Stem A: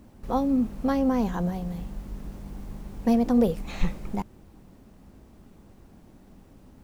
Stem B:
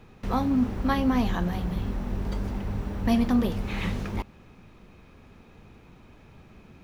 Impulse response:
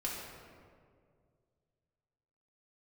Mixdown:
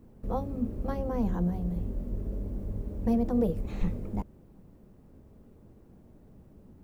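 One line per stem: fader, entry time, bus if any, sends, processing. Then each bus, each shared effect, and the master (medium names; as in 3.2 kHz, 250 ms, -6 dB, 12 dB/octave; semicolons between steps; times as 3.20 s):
-6.5 dB, 0.00 s, no send, peaking EQ 4.6 kHz -7 dB 2.8 oct
-5.0 dB, 0.00 s, polarity flipped, no send, steep low-pass 640 Hz 96 dB/octave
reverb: none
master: none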